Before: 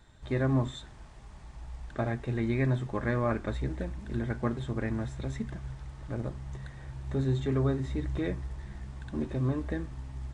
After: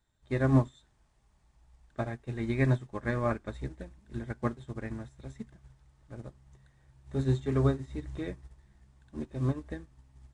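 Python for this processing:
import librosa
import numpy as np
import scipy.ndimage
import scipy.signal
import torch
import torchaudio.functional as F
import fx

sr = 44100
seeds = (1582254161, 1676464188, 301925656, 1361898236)

y = fx.high_shelf(x, sr, hz=6700.0, db=9.5)
y = fx.upward_expand(y, sr, threshold_db=-39.0, expansion=2.5)
y = y * 10.0 ** (5.0 / 20.0)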